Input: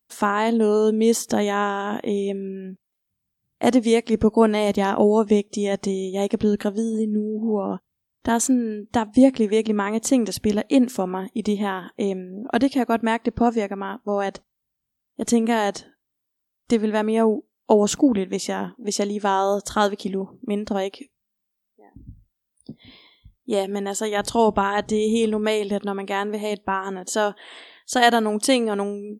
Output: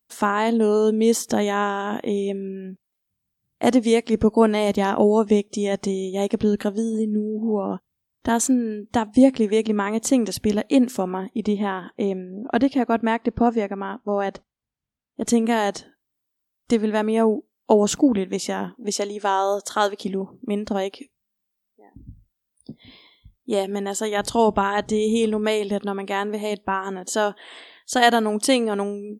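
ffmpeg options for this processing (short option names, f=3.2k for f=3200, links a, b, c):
-filter_complex "[0:a]asettb=1/sr,asplit=3[a][b][c];[a]atrim=end=11.174[d];[b]atrim=start=11.17:end=15.26,asetpts=PTS-STARTPTS,afade=t=in:d=0.004:c=qsin,afade=t=out:st=4.086:d=0.004:c=qsin,aemphasis=mode=reproduction:type=50fm[e];[c]atrim=start=15.256[f];[d][e]acrossfade=d=0.004:c1=hsin:c2=qsin[g];[g][f]acrossfade=d=0.004:c1=qsin:c2=hsin,asettb=1/sr,asplit=3[h][i][j];[h]atrim=end=18.934[k];[i]atrim=start=18.93:end=20.01,asetpts=PTS-STARTPTS,afade=t=in:d=0.004:c=qsin,afade=t=out:st=1.076:d=0.004:c=qsin,highpass=340[l];[j]atrim=start=20.006[m];[k][l]acrossfade=d=0.004:c1=hsin:c2=qsin[n];[n][m]acrossfade=d=0.004:c1=qsin:c2=hsin"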